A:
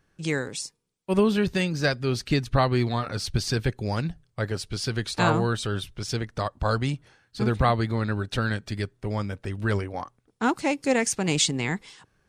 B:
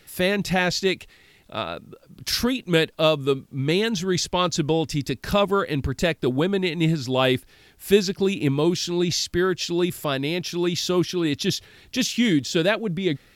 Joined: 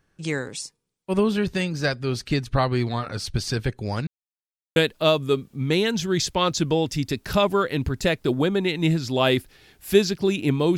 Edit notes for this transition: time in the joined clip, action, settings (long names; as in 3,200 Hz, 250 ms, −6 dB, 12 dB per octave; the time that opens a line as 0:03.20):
A
0:04.07–0:04.76: silence
0:04.76: continue with B from 0:02.74